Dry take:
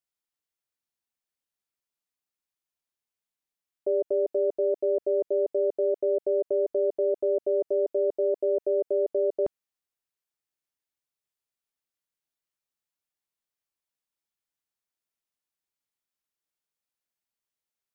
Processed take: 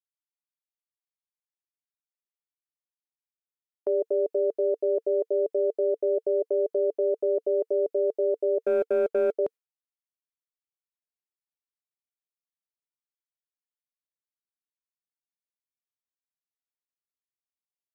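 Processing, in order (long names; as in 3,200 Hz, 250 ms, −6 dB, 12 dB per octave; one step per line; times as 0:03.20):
noise gate with hold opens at −31 dBFS
high-pass filter 300 Hz 6 dB per octave
parametric band 450 Hz +7 dB 0.25 octaves
0:08.65–0:09.38: leveller curve on the samples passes 1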